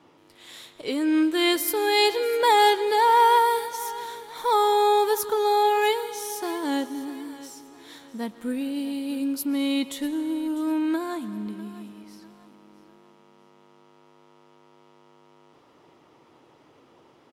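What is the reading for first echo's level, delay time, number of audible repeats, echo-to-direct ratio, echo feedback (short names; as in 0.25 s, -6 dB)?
-17.0 dB, 0.649 s, 3, -16.5 dB, 38%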